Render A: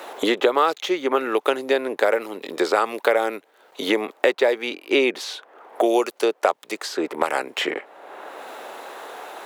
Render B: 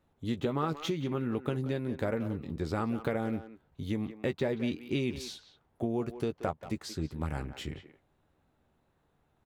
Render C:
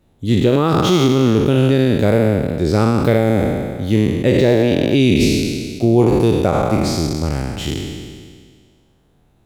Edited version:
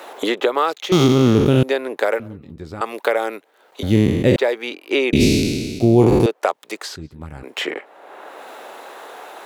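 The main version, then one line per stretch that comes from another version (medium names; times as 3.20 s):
A
0.92–1.63 s: from C
2.20–2.81 s: from B
3.83–4.36 s: from C
5.13–6.26 s: from C
6.96–7.43 s: from B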